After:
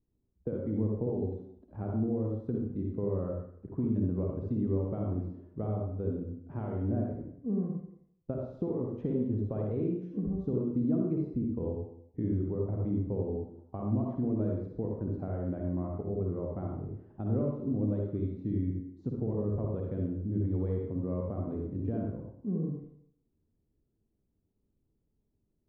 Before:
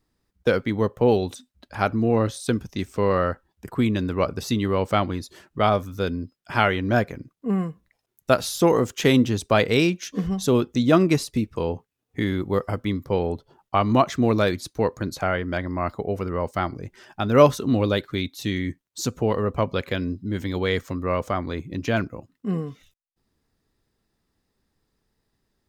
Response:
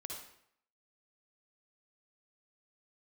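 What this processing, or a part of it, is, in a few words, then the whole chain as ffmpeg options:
television next door: -filter_complex "[0:a]acompressor=threshold=-22dB:ratio=6,lowpass=380[a];[1:a]atrim=start_sample=2205[b];[a][b]afir=irnorm=-1:irlink=0"

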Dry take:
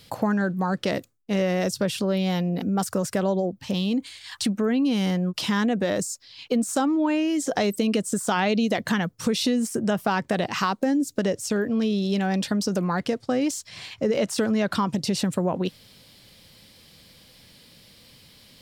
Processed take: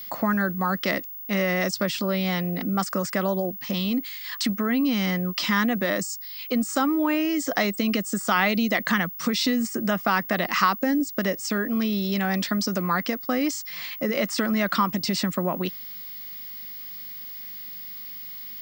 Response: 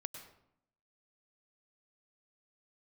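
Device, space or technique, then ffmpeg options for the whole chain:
old television with a line whistle: -af "highpass=f=170:w=0.5412,highpass=f=170:w=1.3066,equalizer=f=440:t=q:w=4:g=-7,equalizer=f=870:t=q:w=4:g=-3,equalizer=f=1.2k:t=q:w=4:g=8,equalizer=f=2k:t=q:w=4:g=9,equalizer=f=5k:t=q:w=4:g=4,lowpass=f=8k:w=0.5412,lowpass=f=8k:w=1.3066,aeval=exprs='val(0)+0.0178*sin(2*PI*15625*n/s)':c=same"

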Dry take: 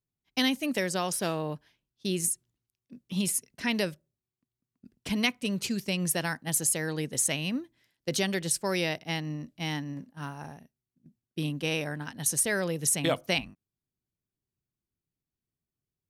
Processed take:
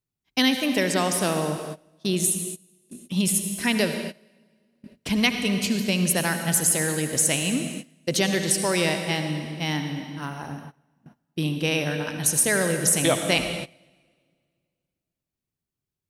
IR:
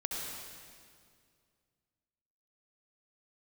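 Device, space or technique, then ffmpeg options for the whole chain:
keyed gated reverb: -filter_complex "[0:a]asplit=3[a][b][c];[1:a]atrim=start_sample=2205[d];[b][d]afir=irnorm=-1:irlink=0[e];[c]apad=whole_len=709845[f];[e][f]sidechaingate=range=-20dB:threshold=-57dB:ratio=16:detection=peak,volume=-3.5dB[g];[a][g]amix=inputs=2:normalize=0,volume=1.5dB"

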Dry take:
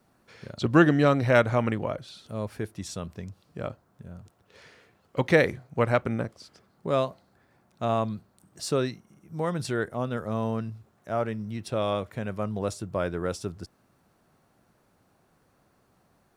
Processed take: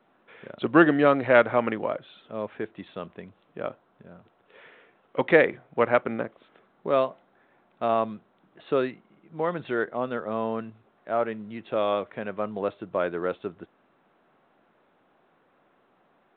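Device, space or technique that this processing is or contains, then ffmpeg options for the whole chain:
telephone: -af "highpass=280,lowpass=3.2k,volume=3dB" -ar 8000 -c:a pcm_mulaw

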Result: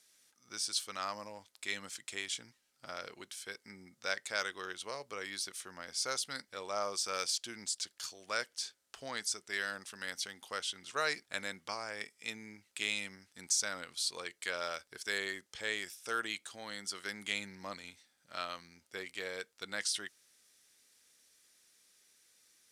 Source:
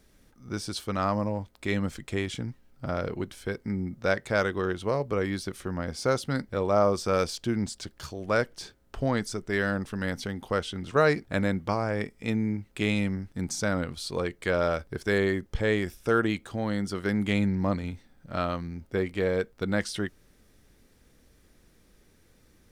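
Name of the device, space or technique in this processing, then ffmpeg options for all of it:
piezo pickup straight into a mixer: -af "lowpass=8.6k,aderivative,volume=6dB"

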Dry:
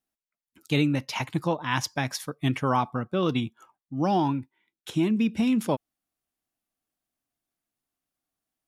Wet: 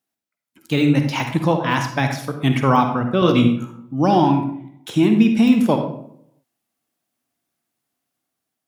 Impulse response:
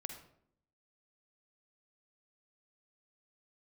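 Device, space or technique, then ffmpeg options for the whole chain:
far laptop microphone: -filter_complex "[0:a]deesser=0.9[a];[1:a]atrim=start_sample=2205[b];[a][b]afir=irnorm=-1:irlink=0,highpass=110,dynaudnorm=f=330:g=5:m=3.5dB,asettb=1/sr,asplit=3[c][d][e];[c]atrim=end=3.204[f];[d]atrim=start=3.2:end=3.94,asetpts=PTS-STARTPTS,afade=t=in:d=0.004:c=qsin,afade=t=out:st=0.736:d=0.004:c=qsin,asplit=2[g][h];[h]adelay=17,volume=-3dB[i];[g][i]amix=inputs=2:normalize=0,atrim=end_sample=32634[j];[e]atrim=start=3.936[k];[f][j]acrossfade=d=0.004:c1=hsin:c2=qsin[l];[l][k]acrossfade=d=0.004:c1=qsin:c2=hsin,volume=8dB"

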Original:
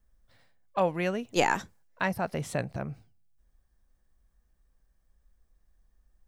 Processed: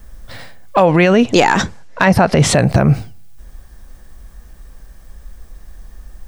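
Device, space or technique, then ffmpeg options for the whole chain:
loud club master: -filter_complex "[0:a]asettb=1/sr,asplit=3[a][b][c];[a]atrim=end=0.854[d];[b]atrim=start=0.85:end=2.55,asetpts=PTS-STARTPTS,afade=t=in:d=0.004:c=qsin,afade=t=out:st=1.696:d=0.004:c=qsin,lowpass=6.4k[e];[c]atrim=start=2.546[f];[d][e]acrossfade=d=0.004:c1=hsin:c2=qsin[g];[g][f]acrossfade=d=0.004:c1=qsin:c2=hsin,acompressor=threshold=-31dB:ratio=2,asoftclip=type=hard:threshold=-20.5dB,alimiter=level_in=31dB:limit=-1dB:release=50:level=0:latency=1,volume=-1dB"

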